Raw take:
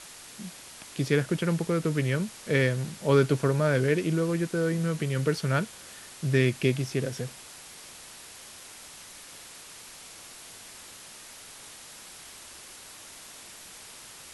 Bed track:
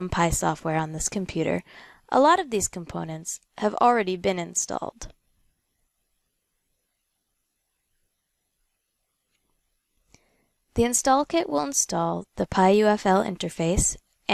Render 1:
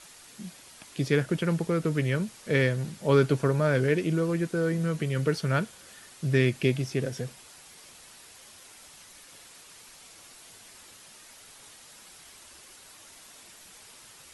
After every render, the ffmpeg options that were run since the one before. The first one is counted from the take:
-af "afftdn=nr=6:nf=-47"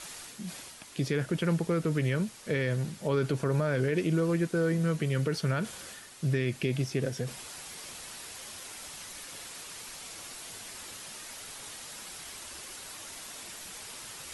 -af "areverse,acompressor=mode=upward:threshold=0.0178:ratio=2.5,areverse,alimiter=limit=0.119:level=0:latency=1:release=49"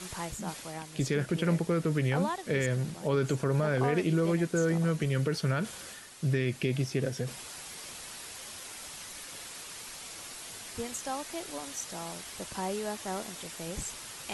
-filter_complex "[1:a]volume=0.158[s0];[0:a][s0]amix=inputs=2:normalize=0"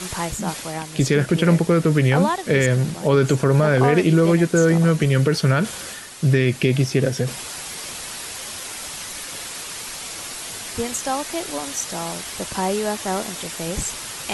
-af "volume=3.76"

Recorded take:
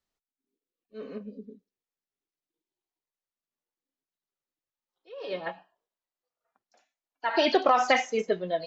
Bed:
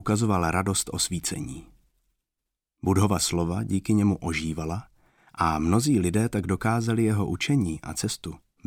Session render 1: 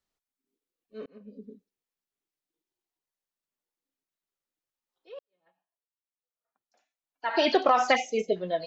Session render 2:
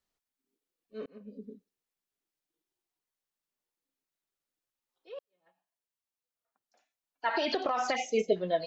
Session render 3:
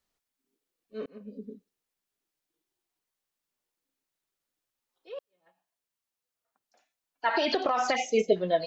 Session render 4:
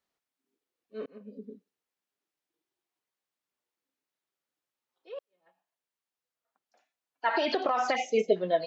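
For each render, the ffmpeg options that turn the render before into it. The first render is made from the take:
-filter_complex "[0:a]asplit=3[s0][s1][s2];[s0]afade=t=out:st=7.95:d=0.02[s3];[s1]asuperstop=centerf=1300:order=12:qfactor=0.97,afade=t=in:st=7.95:d=0.02,afade=t=out:st=8.35:d=0.02[s4];[s2]afade=t=in:st=8.35:d=0.02[s5];[s3][s4][s5]amix=inputs=3:normalize=0,asplit=3[s6][s7][s8];[s6]atrim=end=1.06,asetpts=PTS-STARTPTS,afade=t=out:st=1.056:d=0.004:c=hsin[s9];[s7]atrim=start=1.06:end=5.19,asetpts=PTS-STARTPTS,afade=t=in:d=0.43,afade=t=out:st=4.126:d=0.004:c=hsin[s10];[s8]atrim=start=5.19,asetpts=PTS-STARTPTS,afade=t=in:d=2.26:c=qua[s11];[s9][s10][s11]concat=n=3:v=0:a=1"
-filter_complex "[0:a]asettb=1/sr,asplit=3[s0][s1][s2];[s0]atrim=end=7.354[s3];[s1]atrim=start=7.35:end=8.06,asetpts=PTS-STARTPTS,afade=t=in:d=0.004:c=qsin,afade=t=out:st=0.706:d=0.004:c=qsin,acompressor=threshold=0.0501:ratio=6:attack=3.2:release=140:knee=1:detection=peak[s4];[s2]atrim=start=8.056[s5];[s3][s4]acrossfade=d=0.004:c1=hsin:c2=qsin[s6];[s6][s5]acrossfade=d=0.004:c1=qsin:c2=hsin"
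-af "volume=1.5"
-af "highpass=f=210:p=1,highshelf=f=4600:g=-8.5"

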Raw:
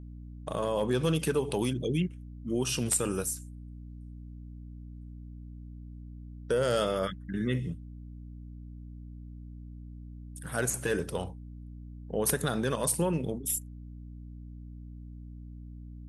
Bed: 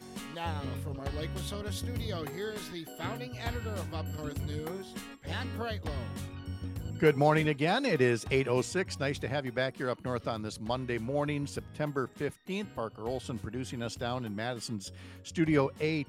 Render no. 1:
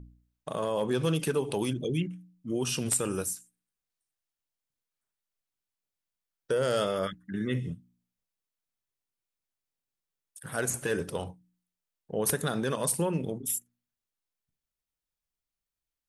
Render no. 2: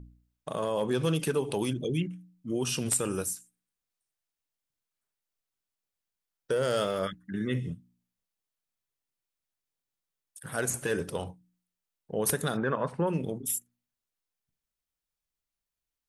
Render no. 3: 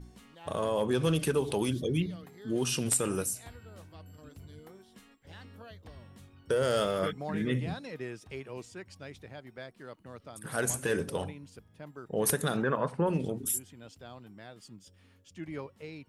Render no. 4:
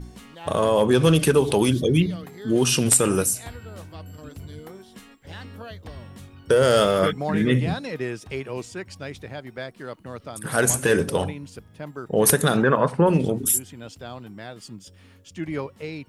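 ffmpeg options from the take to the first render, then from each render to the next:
-af "bandreject=f=60:t=h:w=4,bandreject=f=120:t=h:w=4,bandreject=f=180:t=h:w=4,bandreject=f=240:t=h:w=4,bandreject=f=300:t=h:w=4"
-filter_complex "[0:a]asettb=1/sr,asplit=3[s0][s1][s2];[s0]atrim=end=6.514[s3];[s1]atrim=start=6.51:end=7.02,asetpts=PTS-STARTPTS,afade=t=in:d=0.004:c=qsin,afade=t=out:st=0.506:d=0.004:c=qsin,aeval=exprs='sgn(val(0))*max(abs(val(0))-0.00335,0)':c=same[s4];[s2]atrim=start=7.016[s5];[s3][s4]acrossfade=d=0.004:c1=hsin:c2=qsin[s6];[s6][s5]acrossfade=d=0.004:c1=qsin:c2=hsin,asplit=3[s7][s8][s9];[s7]afade=t=out:st=12.56:d=0.02[s10];[s8]lowpass=f=1500:t=q:w=1.9,afade=t=in:st=12.56:d=0.02,afade=t=out:st=13.06:d=0.02[s11];[s9]afade=t=in:st=13.06:d=0.02[s12];[s10][s11][s12]amix=inputs=3:normalize=0"
-filter_complex "[1:a]volume=0.211[s0];[0:a][s0]amix=inputs=2:normalize=0"
-af "volume=3.35"

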